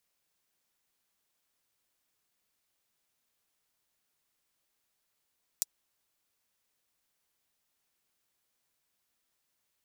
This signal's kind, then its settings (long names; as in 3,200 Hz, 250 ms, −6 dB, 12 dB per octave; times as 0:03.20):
closed synth hi-hat, high-pass 5,800 Hz, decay 0.03 s